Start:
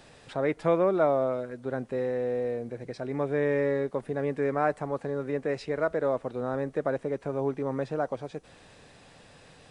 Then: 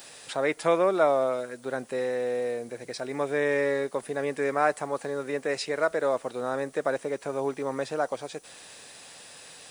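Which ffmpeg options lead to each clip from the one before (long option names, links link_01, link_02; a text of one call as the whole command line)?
ffmpeg -i in.wav -af "aemphasis=mode=production:type=riaa,volume=3.5dB" out.wav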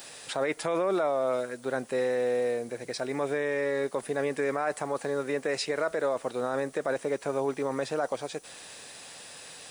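ffmpeg -i in.wav -af "alimiter=limit=-21dB:level=0:latency=1:release=17,volume=1.5dB" out.wav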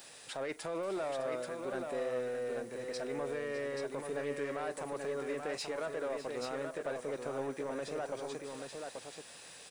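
ffmpeg -i in.wav -filter_complex "[0:a]asoftclip=type=tanh:threshold=-23.5dB,asplit=2[link_01][link_02];[link_02]aecho=0:1:42|606|832:0.112|0.2|0.562[link_03];[link_01][link_03]amix=inputs=2:normalize=0,volume=-7.5dB" out.wav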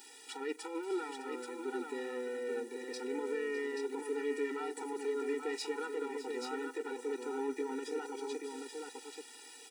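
ffmpeg -i in.wav -filter_complex "[0:a]asplit=2[link_01][link_02];[link_02]aeval=exprs='val(0)*gte(abs(val(0)),0.00299)':channel_layout=same,volume=-7.5dB[link_03];[link_01][link_03]amix=inputs=2:normalize=0,afftfilt=real='re*eq(mod(floor(b*sr/1024/250),2),1)':imag='im*eq(mod(floor(b*sr/1024/250),2),1)':win_size=1024:overlap=0.75" out.wav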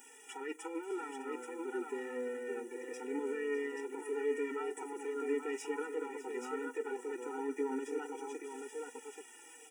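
ffmpeg -i in.wav -af "flanger=delay=4.1:depth=3.5:regen=38:speed=0.45:shape=triangular,asuperstop=centerf=4300:order=4:qfactor=1.5,volume=3dB" out.wav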